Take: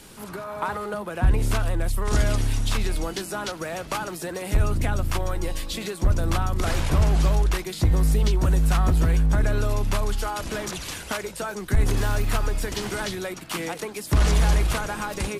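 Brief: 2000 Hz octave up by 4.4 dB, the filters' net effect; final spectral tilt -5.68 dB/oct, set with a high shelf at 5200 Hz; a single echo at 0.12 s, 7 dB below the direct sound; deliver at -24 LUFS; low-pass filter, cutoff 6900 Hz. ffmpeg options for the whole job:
-af "lowpass=6.9k,equalizer=f=2k:t=o:g=6.5,highshelf=f=5.2k:g=-4.5,aecho=1:1:120:0.447"

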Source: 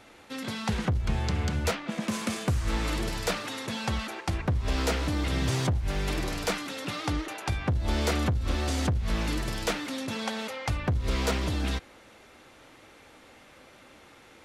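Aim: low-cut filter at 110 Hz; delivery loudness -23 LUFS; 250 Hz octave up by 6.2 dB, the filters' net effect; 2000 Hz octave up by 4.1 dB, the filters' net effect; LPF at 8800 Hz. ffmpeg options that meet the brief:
-af "highpass=110,lowpass=8.8k,equalizer=f=250:t=o:g=8,equalizer=f=2k:t=o:g=5,volume=5dB"

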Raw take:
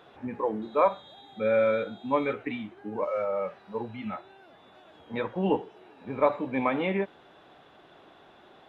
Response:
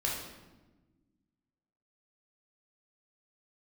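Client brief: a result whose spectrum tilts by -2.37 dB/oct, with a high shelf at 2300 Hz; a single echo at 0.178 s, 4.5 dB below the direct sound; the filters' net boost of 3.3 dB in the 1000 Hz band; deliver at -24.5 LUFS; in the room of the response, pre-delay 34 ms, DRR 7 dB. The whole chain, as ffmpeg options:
-filter_complex "[0:a]equalizer=f=1k:t=o:g=5.5,highshelf=f=2.3k:g=-9,aecho=1:1:178:0.596,asplit=2[a][b];[1:a]atrim=start_sample=2205,adelay=34[c];[b][c]afir=irnorm=-1:irlink=0,volume=-12.5dB[d];[a][d]amix=inputs=2:normalize=0,volume=1.5dB"

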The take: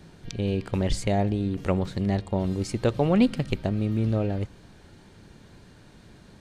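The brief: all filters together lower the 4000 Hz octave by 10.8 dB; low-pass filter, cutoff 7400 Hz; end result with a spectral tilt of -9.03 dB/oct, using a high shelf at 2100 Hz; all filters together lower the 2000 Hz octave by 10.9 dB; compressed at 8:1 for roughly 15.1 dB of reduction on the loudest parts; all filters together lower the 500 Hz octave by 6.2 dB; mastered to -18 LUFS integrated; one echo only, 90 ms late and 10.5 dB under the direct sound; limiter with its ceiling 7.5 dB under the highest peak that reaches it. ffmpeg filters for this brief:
-af "lowpass=7.4k,equalizer=f=500:t=o:g=-7,equalizer=f=2k:t=o:g=-9,highshelf=f=2.1k:g=-5,equalizer=f=4k:t=o:g=-5.5,acompressor=threshold=-33dB:ratio=8,alimiter=level_in=6dB:limit=-24dB:level=0:latency=1,volume=-6dB,aecho=1:1:90:0.299,volume=22dB"

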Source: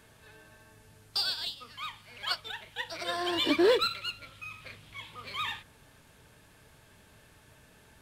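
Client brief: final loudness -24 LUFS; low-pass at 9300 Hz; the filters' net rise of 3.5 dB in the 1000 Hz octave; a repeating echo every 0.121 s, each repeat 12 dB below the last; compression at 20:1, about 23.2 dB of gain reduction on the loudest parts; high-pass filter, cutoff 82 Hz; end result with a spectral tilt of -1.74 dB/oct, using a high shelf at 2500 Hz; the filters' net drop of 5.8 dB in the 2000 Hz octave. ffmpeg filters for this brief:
-af "highpass=82,lowpass=9.3k,equalizer=f=1k:t=o:g=8,equalizer=f=2k:t=o:g=-7,highshelf=f=2.5k:g=-7,acompressor=threshold=-42dB:ratio=20,aecho=1:1:121|242|363:0.251|0.0628|0.0157,volume=23.5dB"

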